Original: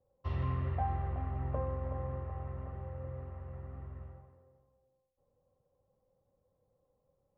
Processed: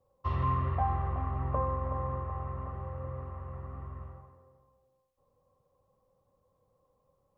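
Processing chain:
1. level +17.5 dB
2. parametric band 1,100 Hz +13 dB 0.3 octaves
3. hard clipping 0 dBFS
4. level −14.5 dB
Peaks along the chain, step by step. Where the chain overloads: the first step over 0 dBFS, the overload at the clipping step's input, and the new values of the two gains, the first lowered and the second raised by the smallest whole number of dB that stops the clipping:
−4.0, −3.0, −3.0, −17.5 dBFS
no step passes full scale

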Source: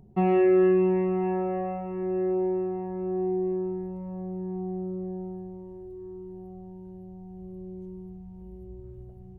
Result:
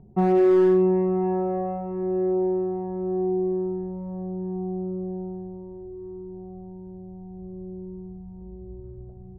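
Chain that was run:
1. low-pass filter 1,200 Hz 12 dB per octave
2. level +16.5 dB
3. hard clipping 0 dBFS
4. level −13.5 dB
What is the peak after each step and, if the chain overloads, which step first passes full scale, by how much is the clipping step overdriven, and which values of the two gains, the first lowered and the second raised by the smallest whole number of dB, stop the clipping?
−13.0, +3.5, 0.0, −13.5 dBFS
step 2, 3.5 dB
step 2 +12.5 dB, step 4 −9.5 dB

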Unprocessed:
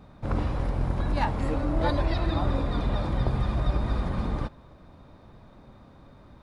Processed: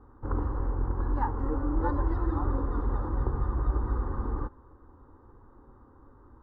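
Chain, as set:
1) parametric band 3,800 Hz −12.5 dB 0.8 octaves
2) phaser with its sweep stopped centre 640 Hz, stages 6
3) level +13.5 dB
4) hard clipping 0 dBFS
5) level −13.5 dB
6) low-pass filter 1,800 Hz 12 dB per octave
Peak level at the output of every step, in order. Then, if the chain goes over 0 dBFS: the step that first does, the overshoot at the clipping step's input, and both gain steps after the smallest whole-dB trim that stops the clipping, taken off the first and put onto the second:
−12.0, −15.5, −2.0, −2.0, −15.5, −16.0 dBFS
no step passes full scale

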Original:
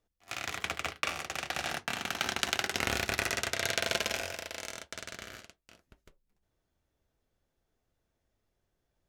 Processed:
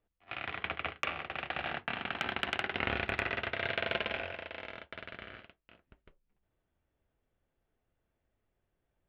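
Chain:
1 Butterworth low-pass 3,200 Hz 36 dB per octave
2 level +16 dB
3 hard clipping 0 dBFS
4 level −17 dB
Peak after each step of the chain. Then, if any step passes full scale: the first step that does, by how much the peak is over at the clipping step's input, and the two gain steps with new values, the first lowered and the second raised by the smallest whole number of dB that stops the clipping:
−11.5, +4.5, 0.0, −17.0 dBFS
step 2, 4.5 dB
step 2 +11 dB, step 4 −12 dB

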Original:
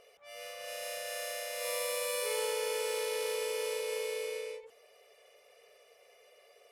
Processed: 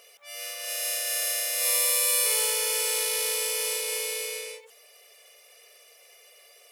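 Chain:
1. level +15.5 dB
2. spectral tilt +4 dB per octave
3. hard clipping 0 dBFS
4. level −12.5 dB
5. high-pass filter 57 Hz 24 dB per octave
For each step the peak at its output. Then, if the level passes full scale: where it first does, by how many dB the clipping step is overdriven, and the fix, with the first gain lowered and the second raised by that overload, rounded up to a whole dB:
−6.0, +3.5, 0.0, −12.5, −12.0 dBFS
step 2, 3.5 dB
step 1 +11.5 dB, step 4 −8.5 dB

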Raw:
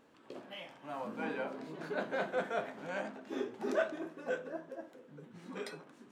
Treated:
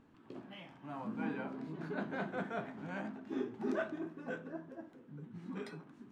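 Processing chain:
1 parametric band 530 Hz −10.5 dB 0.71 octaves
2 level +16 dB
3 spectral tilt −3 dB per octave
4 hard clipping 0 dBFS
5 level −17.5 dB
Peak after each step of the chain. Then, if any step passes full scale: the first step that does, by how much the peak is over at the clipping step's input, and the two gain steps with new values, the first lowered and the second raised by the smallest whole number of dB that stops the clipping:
−21.5, −5.5, −5.5, −5.5, −23.0 dBFS
no step passes full scale

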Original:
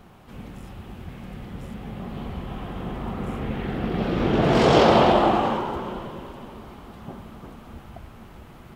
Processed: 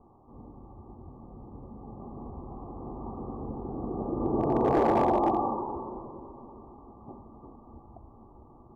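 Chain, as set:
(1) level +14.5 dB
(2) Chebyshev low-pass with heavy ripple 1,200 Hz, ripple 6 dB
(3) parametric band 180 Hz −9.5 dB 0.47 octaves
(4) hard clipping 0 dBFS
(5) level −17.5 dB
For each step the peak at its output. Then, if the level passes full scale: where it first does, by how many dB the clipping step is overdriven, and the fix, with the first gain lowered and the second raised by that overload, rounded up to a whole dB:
+11.5, +7.5, +7.0, 0.0, −17.5 dBFS
step 1, 7.0 dB
step 1 +7.5 dB, step 5 −10.5 dB

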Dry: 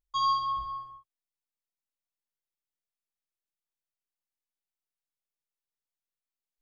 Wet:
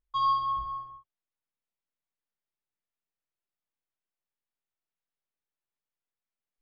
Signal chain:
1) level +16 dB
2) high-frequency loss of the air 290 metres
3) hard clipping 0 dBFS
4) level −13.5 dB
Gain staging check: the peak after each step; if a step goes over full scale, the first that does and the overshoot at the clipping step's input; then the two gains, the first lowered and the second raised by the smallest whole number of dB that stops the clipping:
−2.5, −5.5, −5.5, −19.0 dBFS
no step passes full scale

